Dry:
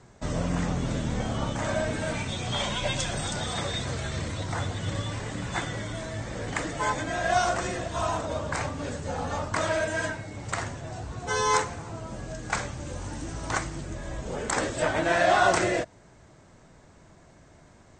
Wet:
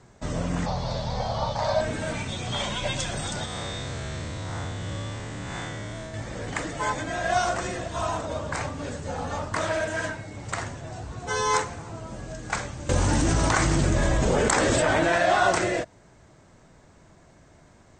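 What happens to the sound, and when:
0:00.66–0:01.81: drawn EQ curve 120 Hz 0 dB, 200 Hz −5 dB, 310 Hz −15 dB, 550 Hz +5 dB, 910 Hz +9 dB, 1,400 Hz −3 dB, 3,000 Hz −3 dB, 4,500 Hz +13 dB, 7,200 Hz −9 dB, 11,000 Hz −16 dB
0:03.45–0:06.14: spectrum smeared in time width 157 ms
0:09.40–0:10.18: highs frequency-modulated by the lows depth 0.13 ms
0:12.89–0:15.18: envelope flattener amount 100%

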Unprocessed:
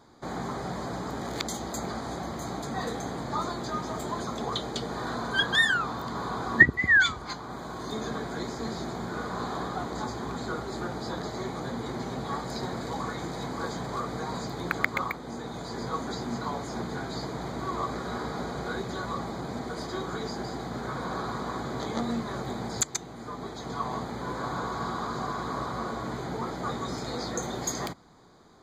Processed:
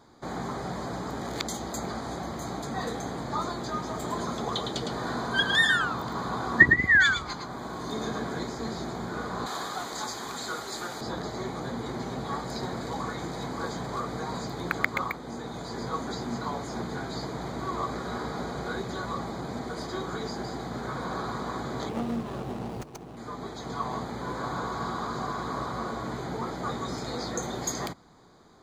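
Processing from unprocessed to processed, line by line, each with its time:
0:03.92–0:08.44: single-tap delay 109 ms −5.5 dB
0:09.46–0:11.01: spectral tilt +3.5 dB per octave
0:21.89–0:23.17: running median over 25 samples

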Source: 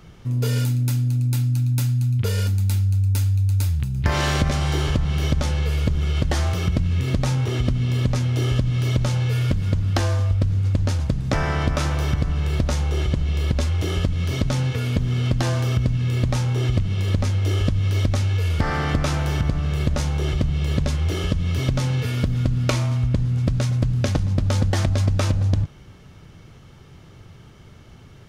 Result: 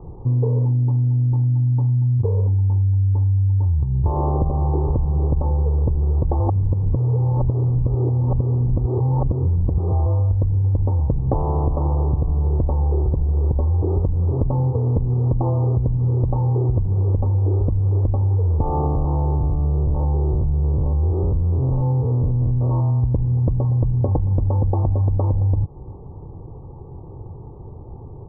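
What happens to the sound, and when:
0:06.40–0:10.06: reverse
0:18.86–0:23.03: spectrum averaged block by block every 100 ms
whole clip: Chebyshev low-pass filter 1,100 Hz, order 8; comb filter 2.4 ms, depth 52%; downward compressor, threshold −25 dBFS; level +9 dB

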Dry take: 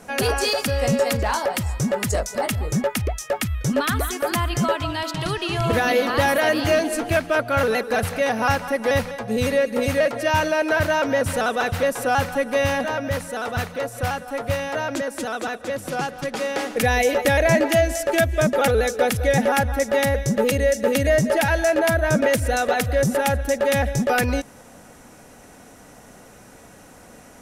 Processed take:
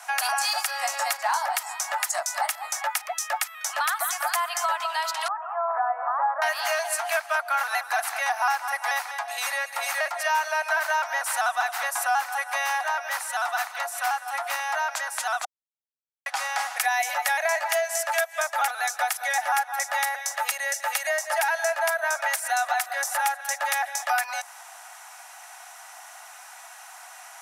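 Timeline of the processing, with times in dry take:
0:05.28–0:06.42: Butterworth low-pass 1,300 Hz
0:15.45–0:16.26: silence
whole clip: Butterworth high-pass 700 Hz 72 dB per octave; dynamic equaliser 3,100 Hz, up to −7 dB, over −41 dBFS, Q 1.2; downward compressor 2.5 to 1, threshold −29 dBFS; level +5.5 dB

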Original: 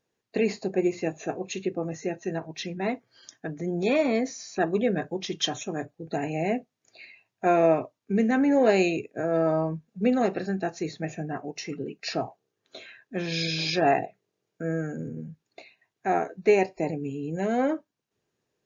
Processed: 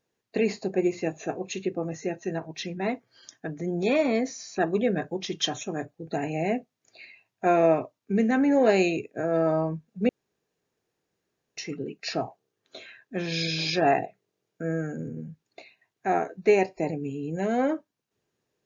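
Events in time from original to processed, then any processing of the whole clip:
0:10.09–0:11.57: fill with room tone

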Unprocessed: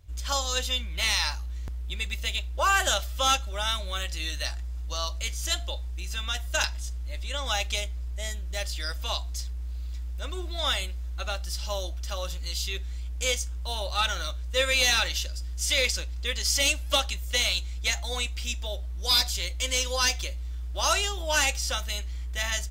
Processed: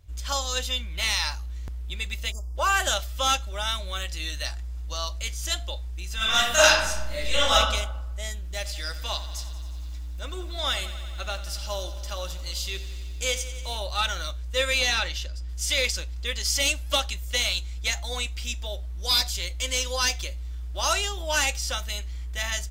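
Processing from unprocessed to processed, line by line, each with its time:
0:02.32–0:02.56: time-frequency box erased 1,300–4,700 Hz
0:06.16–0:07.53: thrown reverb, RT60 0.94 s, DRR −11.5 dB
0:08.35–0:13.77: feedback echo at a low word length 90 ms, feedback 80%, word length 9 bits, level −14 dB
0:14.78–0:15.48: high-shelf EQ 9,200 Hz → 4,900 Hz −12 dB

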